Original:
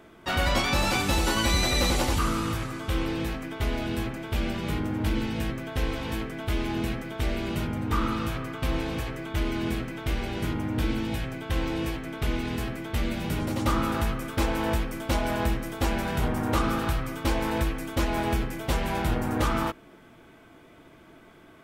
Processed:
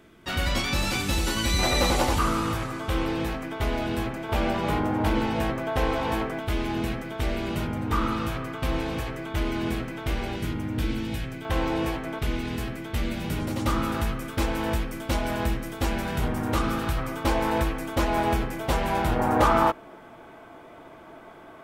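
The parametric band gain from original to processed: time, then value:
parametric band 790 Hz 1.8 octaves
−6 dB
from 0:01.59 +5.5 dB
from 0:04.29 +12 dB
from 0:06.39 +3 dB
from 0:10.36 −4 dB
from 0:11.45 +8 dB
from 0:12.19 −1 dB
from 0:16.97 +5.5 dB
from 0:19.19 +11.5 dB

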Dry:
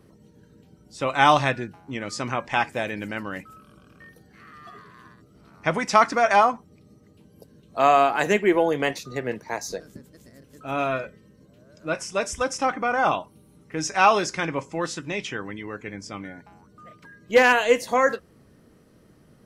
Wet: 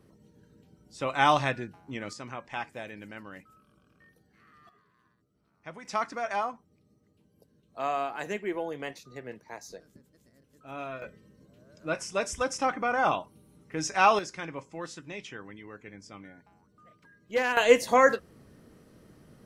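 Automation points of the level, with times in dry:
−5.5 dB
from 0:02.13 −12.5 dB
from 0:04.69 −20 dB
from 0:05.85 −13 dB
from 0:11.02 −4 dB
from 0:14.19 −11 dB
from 0:17.57 0 dB

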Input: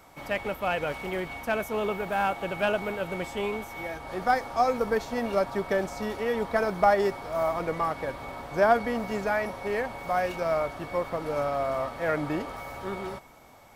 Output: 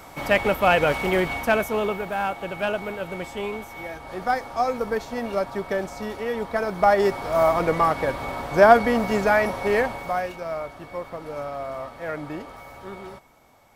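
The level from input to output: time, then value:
0:01.30 +10 dB
0:02.17 +0.5 dB
0:06.64 +0.5 dB
0:07.29 +8 dB
0:09.83 +8 dB
0:10.37 −3.5 dB

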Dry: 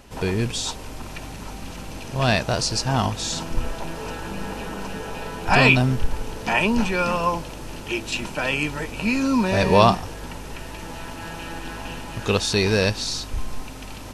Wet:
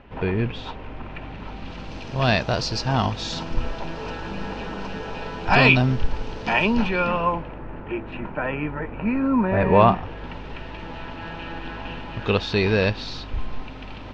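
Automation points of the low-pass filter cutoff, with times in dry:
low-pass filter 24 dB per octave
0:01.16 2,800 Hz
0:01.95 4,900 Hz
0:06.66 4,900 Hz
0:07.69 1,900 Hz
0:09.47 1,900 Hz
0:10.35 3,700 Hz

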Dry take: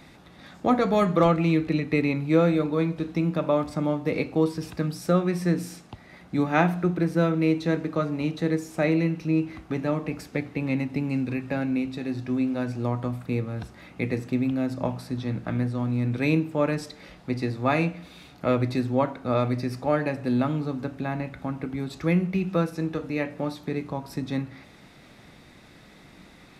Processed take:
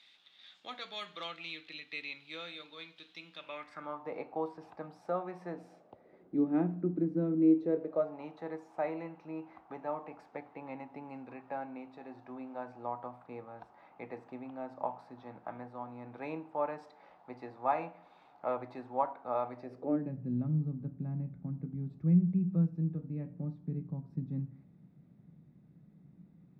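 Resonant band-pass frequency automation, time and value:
resonant band-pass, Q 3.5
0:03.38 3,400 Hz
0:04.13 810 Hz
0:05.50 810 Hz
0:06.66 270 Hz
0:07.36 270 Hz
0:08.22 850 Hz
0:19.59 850 Hz
0:20.14 160 Hz

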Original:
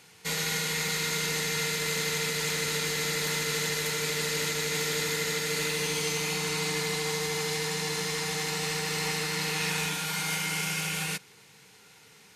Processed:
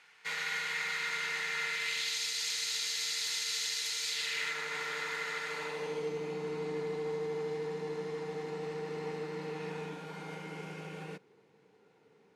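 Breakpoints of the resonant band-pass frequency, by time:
resonant band-pass, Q 1.3
0:01.68 1,700 Hz
0:02.20 4,700 Hz
0:04.08 4,700 Hz
0:04.62 1,300 Hz
0:05.44 1,300 Hz
0:06.12 390 Hz

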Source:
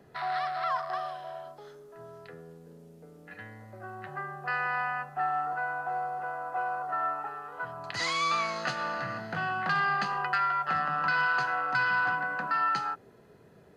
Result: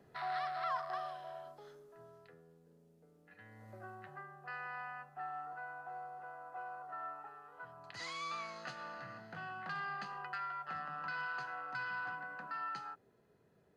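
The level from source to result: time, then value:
0:01.74 −7 dB
0:02.41 −14.5 dB
0:03.37 −14.5 dB
0:03.71 −5 dB
0:04.29 −14 dB

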